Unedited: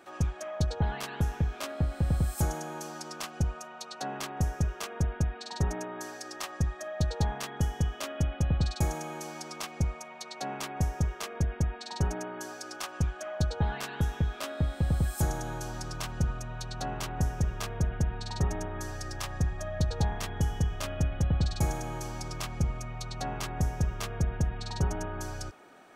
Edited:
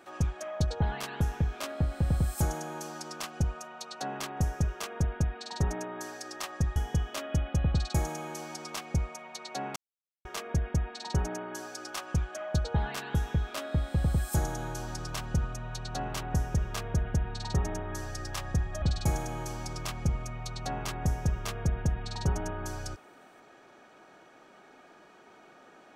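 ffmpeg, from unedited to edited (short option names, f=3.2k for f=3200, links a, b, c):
-filter_complex "[0:a]asplit=5[a][b][c][d][e];[a]atrim=end=6.762[f];[b]atrim=start=7.618:end=10.62,asetpts=PTS-STARTPTS,afade=t=out:st=2.998:d=0.004:c=hsin[g];[c]atrim=start=10.62:end=11.11,asetpts=PTS-STARTPTS,volume=0[h];[d]atrim=start=11.11:end=19.682,asetpts=PTS-STARTPTS,afade=t=in:d=0.004:c=hsin[i];[e]atrim=start=21.368[j];[g][h][i]concat=n=3:v=0:a=1[k];[f][k]acrossfade=d=0.004:c1=hsin:c2=hsin[l];[l][j]acrossfade=d=0.004:c1=hsin:c2=hsin"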